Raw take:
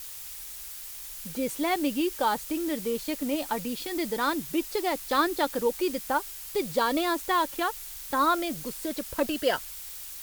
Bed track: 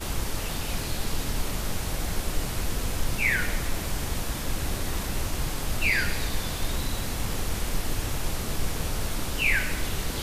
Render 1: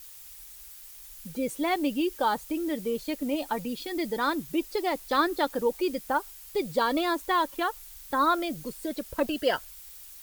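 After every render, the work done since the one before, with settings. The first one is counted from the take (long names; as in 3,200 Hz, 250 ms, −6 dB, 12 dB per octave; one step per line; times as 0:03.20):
broadband denoise 8 dB, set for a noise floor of −41 dBFS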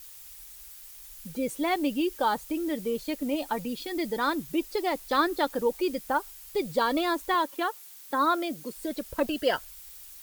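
0:07.34–0:08.76: Chebyshev high-pass filter 240 Hz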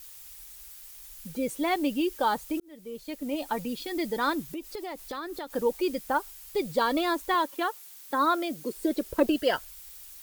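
0:02.60–0:03.56: fade in
0:04.43–0:05.53: downward compressor, threshold −33 dBFS
0:08.64–0:09.36: parametric band 380 Hz +10 dB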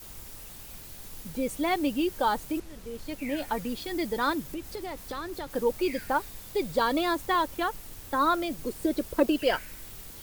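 mix in bed track −18.5 dB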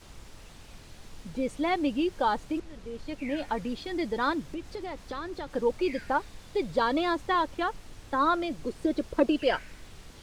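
high-frequency loss of the air 84 metres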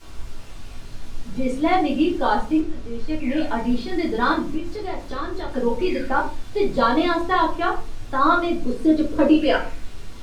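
rectangular room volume 210 cubic metres, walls furnished, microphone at 3.2 metres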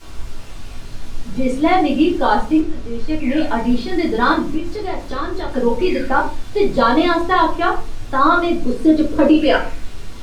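level +5 dB
brickwall limiter −3 dBFS, peak gain reduction 2.5 dB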